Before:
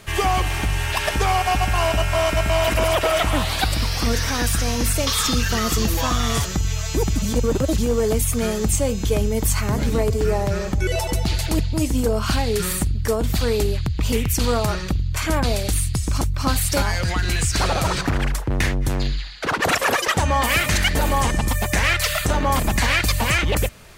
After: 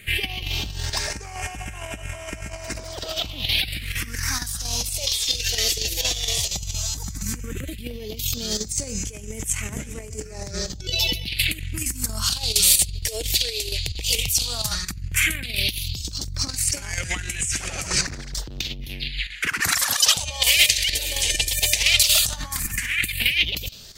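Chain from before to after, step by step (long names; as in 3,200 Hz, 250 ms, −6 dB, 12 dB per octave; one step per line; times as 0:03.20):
dynamic equaliser 3,900 Hz, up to +4 dB, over −36 dBFS, Q 1.1
all-pass phaser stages 4, 0.13 Hz, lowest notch 200–4,100 Hz
square-wave tremolo 4.3 Hz, depth 65%, duty 85%
compressor whose output falls as the input rises −23 dBFS, ratio −0.5
high shelf with overshoot 1,600 Hz +8 dB, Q 1.5, from 0:08.17 +14 dB
level −7 dB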